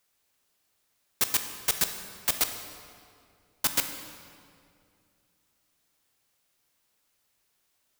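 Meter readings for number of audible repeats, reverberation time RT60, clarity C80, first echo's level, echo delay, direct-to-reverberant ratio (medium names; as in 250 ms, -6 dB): no echo, 2.4 s, 9.0 dB, no echo, no echo, 6.5 dB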